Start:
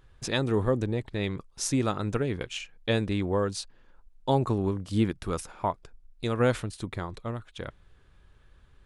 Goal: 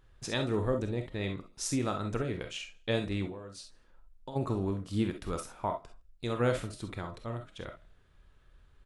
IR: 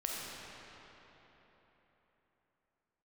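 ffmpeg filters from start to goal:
-filter_complex "[0:a]asplit=3[link_01][link_02][link_03];[link_01]afade=type=out:start_time=3.26:duration=0.02[link_04];[link_02]acompressor=threshold=-36dB:ratio=16,afade=type=in:start_time=3.26:duration=0.02,afade=type=out:start_time=4.35:duration=0.02[link_05];[link_03]afade=type=in:start_time=4.35:duration=0.02[link_06];[link_04][link_05][link_06]amix=inputs=3:normalize=0,asplit=4[link_07][link_08][link_09][link_10];[link_08]adelay=81,afreqshift=35,volume=-22dB[link_11];[link_09]adelay=162,afreqshift=70,volume=-30.4dB[link_12];[link_10]adelay=243,afreqshift=105,volume=-38.8dB[link_13];[link_07][link_11][link_12][link_13]amix=inputs=4:normalize=0[link_14];[1:a]atrim=start_sample=2205,atrim=end_sample=3087[link_15];[link_14][link_15]afir=irnorm=-1:irlink=0,volume=-3.5dB"

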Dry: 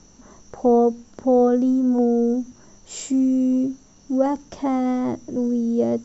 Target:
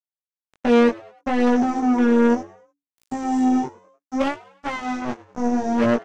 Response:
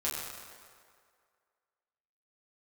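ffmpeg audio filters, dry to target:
-filter_complex "[0:a]aecho=1:1:4.9:0.73,asplit=2[link_01][link_02];[link_02]aecho=0:1:371:0.0794[link_03];[link_01][link_03]amix=inputs=2:normalize=0,acrusher=bits=2:mix=0:aa=0.5,asplit=2[link_04][link_05];[link_05]asplit=3[link_06][link_07][link_08];[link_06]adelay=100,afreqshift=94,volume=-20dB[link_09];[link_07]adelay=200,afreqshift=188,volume=-27.3dB[link_10];[link_08]adelay=300,afreqshift=282,volume=-34.7dB[link_11];[link_09][link_10][link_11]amix=inputs=3:normalize=0[link_12];[link_04][link_12]amix=inputs=2:normalize=0,flanger=delay=16.5:depth=4.7:speed=0.66"

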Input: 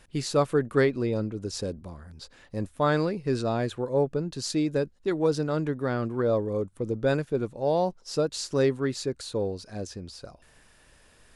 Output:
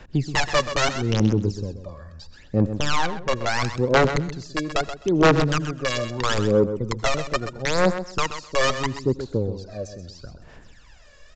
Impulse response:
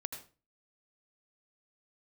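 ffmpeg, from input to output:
-filter_complex "[0:a]acrossover=split=110|830[link_01][link_02][link_03];[link_03]acompressor=threshold=-50dB:ratio=5[link_04];[link_01][link_02][link_04]amix=inputs=3:normalize=0,aeval=exprs='(mod(7.94*val(0)+1,2)-1)/7.94':channel_layout=same,aphaser=in_gain=1:out_gain=1:delay=1.8:decay=0.76:speed=0.76:type=sinusoidal,asoftclip=type=tanh:threshold=-10dB,aecho=1:1:129|258|387:0.299|0.0567|0.0108,asettb=1/sr,asplit=3[link_05][link_06][link_07];[link_05]atrim=end=2.964[link_08];[link_06]atrim=start=2.96:end=3.47,asetpts=PTS-STARTPTS,afade=type=in:duration=0.004:curve=qsin,afade=type=out:start_time=0.506:duration=0.004:curve=qsin,adynamicsmooth=sensitivity=2.5:basefreq=860[link_09];[link_07]atrim=start=3.466[link_10];[link_08][link_09]acrossfade=duration=0.004:curve1=hsin:curve2=qsin[link_11];[link_11][link_10]acrossfade=duration=0.004:curve1=qsin:curve2=hsin,asplit=2[link_12][link_13];[1:a]atrim=start_sample=2205,afade=type=out:start_time=0.18:duration=0.01,atrim=end_sample=8379,highshelf=frequency=4200:gain=8[link_14];[link_13][link_14]afir=irnorm=-1:irlink=0,volume=-14.5dB[link_15];[link_12][link_15]amix=inputs=2:normalize=0,aresample=16000,aresample=44100"

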